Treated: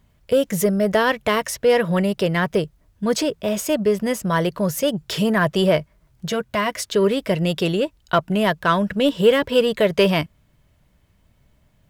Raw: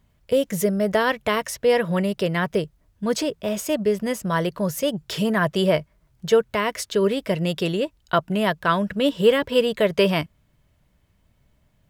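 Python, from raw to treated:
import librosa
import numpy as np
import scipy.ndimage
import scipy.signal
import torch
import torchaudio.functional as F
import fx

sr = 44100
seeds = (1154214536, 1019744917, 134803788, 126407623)

p1 = 10.0 ** (-18.5 / 20.0) * np.tanh(x / 10.0 ** (-18.5 / 20.0))
p2 = x + (p1 * 10.0 ** (-6.0 / 20.0))
y = fx.notch_comb(p2, sr, f0_hz=440.0, at=(6.28, 6.83))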